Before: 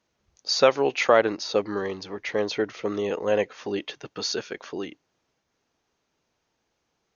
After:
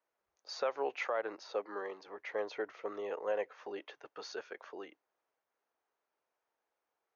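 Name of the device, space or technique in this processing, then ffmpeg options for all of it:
DJ mixer with the lows and highs turned down: -filter_complex "[0:a]asettb=1/sr,asplit=3[a][b][c];[a]atrim=end=1.524[d];[b]atrim=start=1.52:end=2.08,asetpts=PTS-STARTPTS,afade=t=in:d=0.004:c=qsin,afade=t=out:st=0.556:d=0.004:c=qsin,highpass=f=180:w=0.5412,highpass=f=180:w=1.3066[e];[c]atrim=start=2.076[f];[d][e]acrossfade=d=0.004:c1=hsin:c2=qsin[g];[g][f]acrossfade=d=0.004:c1=qsin:c2=hsin,acrossover=split=420 2000:gain=0.0708 1 0.2[h][i][j];[h][i][j]amix=inputs=3:normalize=0,alimiter=limit=-17dB:level=0:latency=1:release=142,volume=-7dB"

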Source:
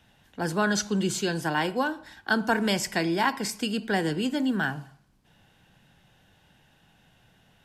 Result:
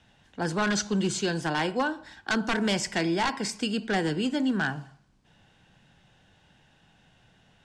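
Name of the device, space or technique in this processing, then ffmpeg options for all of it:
synthesiser wavefolder: -af "aeval=exprs='0.112*(abs(mod(val(0)/0.112+3,4)-2)-1)':c=same,lowpass=f=8.6k:w=0.5412,lowpass=f=8.6k:w=1.3066"

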